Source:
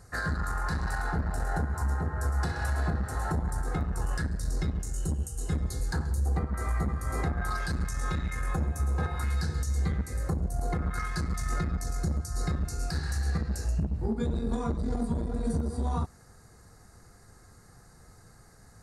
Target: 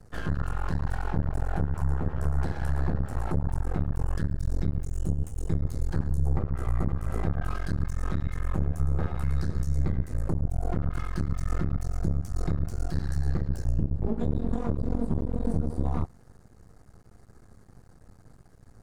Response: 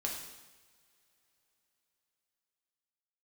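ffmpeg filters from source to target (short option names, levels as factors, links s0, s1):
-af "aeval=exprs='max(val(0),0)':c=same,tiltshelf=f=970:g=6.5"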